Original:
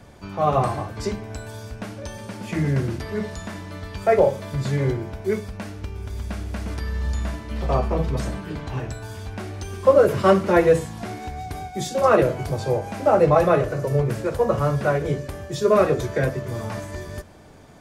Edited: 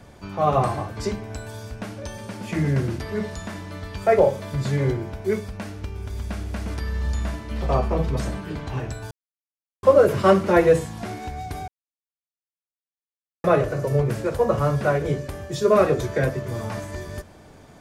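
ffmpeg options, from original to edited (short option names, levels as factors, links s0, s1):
-filter_complex "[0:a]asplit=5[s0][s1][s2][s3][s4];[s0]atrim=end=9.11,asetpts=PTS-STARTPTS,afade=t=out:st=9.106:d=0.004:c=hsin[s5];[s1]atrim=start=9.11:end=9.83,asetpts=PTS-STARTPTS,volume=0[s6];[s2]atrim=start=9.83:end=11.68,asetpts=PTS-STARTPTS,afade=t=in:d=0.004:c=hsin,afade=t=out:st=1.846:d=0.004:c=hsin[s7];[s3]atrim=start=11.68:end=13.44,asetpts=PTS-STARTPTS,volume=0[s8];[s4]atrim=start=13.44,asetpts=PTS-STARTPTS,afade=t=in:d=0.004:c=hsin[s9];[s5][s6][s7][s8][s9]concat=n=5:v=0:a=1"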